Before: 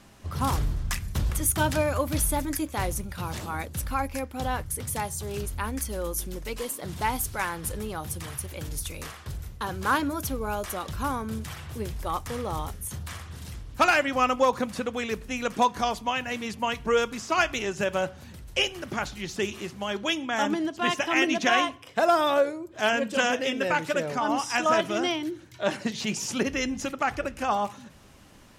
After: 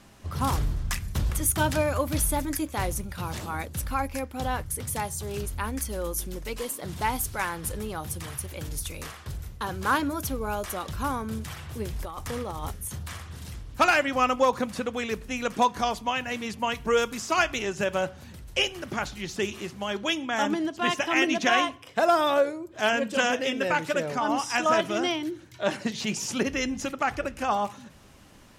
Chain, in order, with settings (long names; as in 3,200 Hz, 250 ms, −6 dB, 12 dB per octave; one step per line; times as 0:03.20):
0:11.93–0:12.72: compressor whose output falls as the input rises −32 dBFS, ratio −0.5
0:16.74–0:17.38: high-shelf EQ 12,000 Hz → 6,600 Hz +9 dB